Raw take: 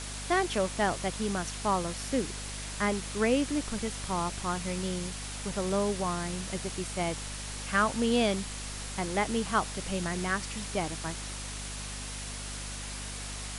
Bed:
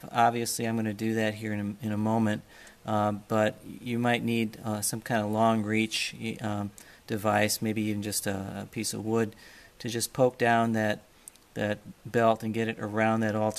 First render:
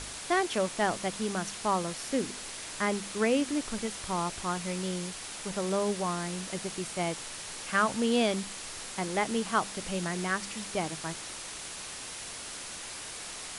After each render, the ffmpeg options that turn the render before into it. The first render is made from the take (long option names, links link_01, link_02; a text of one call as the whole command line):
ffmpeg -i in.wav -af "bandreject=frequency=50:width_type=h:width=4,bandreject=frequency=100:width_type=h:width=4,bandreject=frequency=150:width_type=h:width=4,bandreject=frequency=200:width_type=h:width=4,bandreject=frequency=250:width_type=h:width=4" out.wav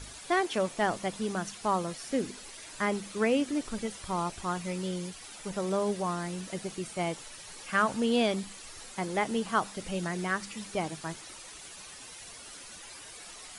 ffmpeg -i in.wav -af "afftdn=noise_reduction=10:noise_floor=-42" out.wav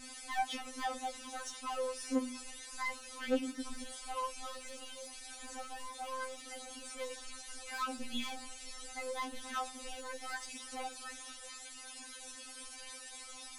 ffmpeg -i in.wav -af "asoftclip=type=tanh:threshold=-30.5dB,afftfilt=real='re*3.46*eq(mod(b,12),0)':imag='im*3.46*eq(mod(b,12),0)':win_size=2048:overlap=0.75" out.wav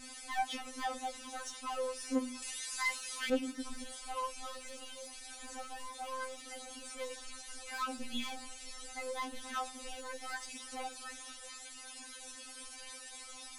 ffmpeg -i in.wav -filter_complex "[0:a]asettb=1/sr,asplit=3[link_01][link_02][link_03];[link_01]atrim=end=2.424[link_04];[link_02]atrim=start=2.42:end=3.3,asetpts=PTS-STARTPTS,afade=type=in:duration=0.004:curve=qsin,afade=type=out:start_time=0.876:duration=0.004:curve=qsin,tiltshelf=frequency=930:gain=-8[link_05];[link_03]atrim=start=3.296[link_06];[link_04][link_05]acrossfade=duration=0.004:curve1=hsin:curve2=qsin[link_07];[link_07][link_06]acrossfade=duration=0.004:curve1=qsin:curve2=hsin" out.wav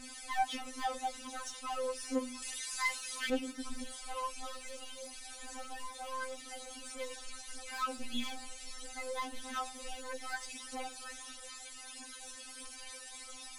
ffmpeg -i in.wav -af "aphaser=in_gain=1:out_gain=1:delay=3.8:decay=0.35:speed=0.79:type=triangular" out.wav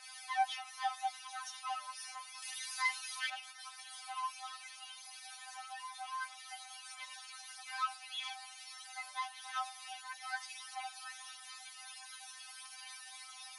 ffmpeg -i in.wav -af "afftfilt=real='re*between(b*sr/4096,580,11000)':imag='im*between(b*sr/4096,580,11000)':win_size=4096:overlap=0.75,equalizer=frequency=7600:width=4:gain=-13.5" out.wav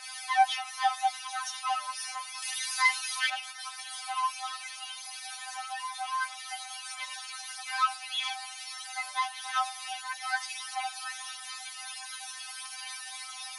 ffmpeg -i in.wav -af "volume=9.5dB" out.wav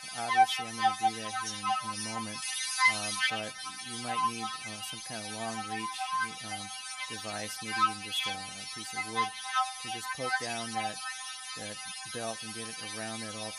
ffmpeg -i in.wav -i bed.wav -filter_complex "[1:a]volume=-15dB[link_01];[0:a][link_01]amix=inputs=2:normalize=0" out.wav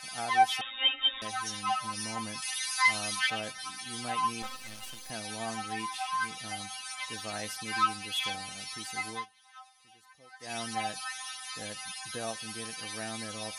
ffmpeg -i in.wav -filter_complex "[0:a]asettb=1/sr,asplit=3[link_01][link_02][link_03];[link_01]atrim=end=0.614[link_04];[link_02]atrim=start=0.61:end=1.22,asetpts=PTS-STARTPTS,afade=type=in:duration=0.004:curve=qsin,afade=type=out:start_time=0.606:duration=0.004:curve=qsin,lowpass=frequency=3300:width_type=q:width=0.5098,lowpass=frequency=3300:width_type=q:width=0.6013,lowpass=frequency=3300:width_type=q:width=0.9,lowpass=frequency=3300:width_type=q:width=2.563,afreqshift=-3900[link_05];[link_03]atrim=start=1.216[link_06];[link_04][link_05]acrossfade=duration=0.004:curve1=hsin:curve2=qsin[link_07];[link_07][link_06]acrossfade=duration=0.004:curve1=qsin:curve2=hsin,asettb=1/sr,asplit=3[link_08][link_09][link_10];[link_08]atrim=end=4.424[link_11];[link_09]atrim=start=4.42:end=5.1,asetpts=PTS-STARTPTS,afade=type=in:duration=0.004:curve=qsin,afade=type=out:start_time=0.676:duration=0.004:curve=qsin,aeval=exprs='max(val(0),0)':channel_layout=same[link_12];[link_10]atrim=start=5.096[link_13];[link_11][link_12]acrossfade=duration=0.004:curve1=hsin:curve2=qsin[link_14];[link_14][link_13]acrossfade=duration=0.004:curve1=qsin:curve2=hsin,asplit=3[link_15][link_16][link_17];[link_15]atrim=end=9.26,asetpts=PTS-STARTPTS,afade=type=out:start_time=9.08:duration=0.18:silence=0.0794328[link_18];[link_16]atrim=start=9.26:end=10.39,asetpts=PTS-STARTPTS,volume=-22dB[link_19];[link_17]atrim=start=10.39,asetpts=PTS-STARTPTS,afade=type=in:duration=0.18:silence=0.0794328[link_20];[link_18][link_19][link_20]concat=n=3:v=0:a=1" out.wav